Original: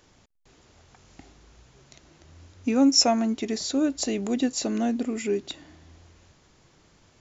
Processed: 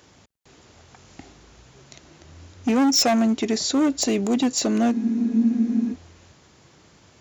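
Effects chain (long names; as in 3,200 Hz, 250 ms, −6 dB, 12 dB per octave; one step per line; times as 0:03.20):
hard clipping −22 dBFS, distortion −9 dB
high-pass filter 67 Hz
frozen spectrum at 0:04.95, 0.98 s
level +6 dB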